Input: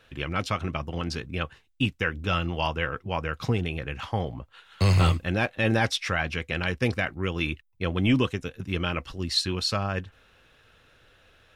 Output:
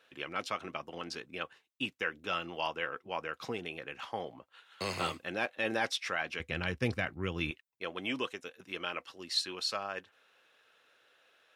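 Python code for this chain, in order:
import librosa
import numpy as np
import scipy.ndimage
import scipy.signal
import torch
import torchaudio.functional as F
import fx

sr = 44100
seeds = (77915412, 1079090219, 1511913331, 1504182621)

y = fx.highpass(x, sr, hz=fx.steps((0.0, 330.0), (6.4, 75.0), (7.51, 440.0)), slope=12)
y = F.gain(torch.from_numpy(y), -6.5).numpy()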